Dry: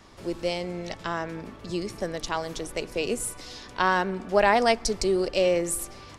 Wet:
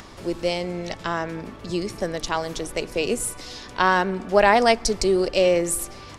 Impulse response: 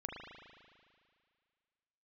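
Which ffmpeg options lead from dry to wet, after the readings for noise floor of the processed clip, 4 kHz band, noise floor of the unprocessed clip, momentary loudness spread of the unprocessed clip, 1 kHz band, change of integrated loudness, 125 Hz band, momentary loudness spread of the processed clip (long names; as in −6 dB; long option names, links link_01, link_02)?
−41 dBFS, +4.0 dB, −46 dBFS, 12 LU, +4.0 dB, +4.0 dB, +4.0 dB, 12 LU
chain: -af "acompressor=mode=upward:threshold=-41dB:ratio=2.5,volume=4dB"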